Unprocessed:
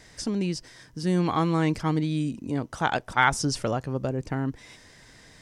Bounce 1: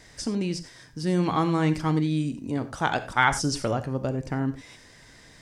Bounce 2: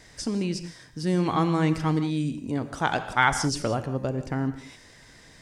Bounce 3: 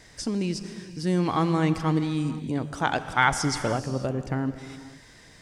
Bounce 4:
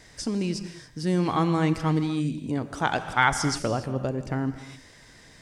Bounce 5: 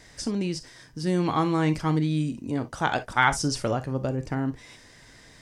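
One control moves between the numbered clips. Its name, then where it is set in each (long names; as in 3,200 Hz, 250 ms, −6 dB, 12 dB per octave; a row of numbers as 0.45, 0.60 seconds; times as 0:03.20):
reverb whose tail is shaped and stops, gate: 120, 210, 520, 310, 80 milliseconds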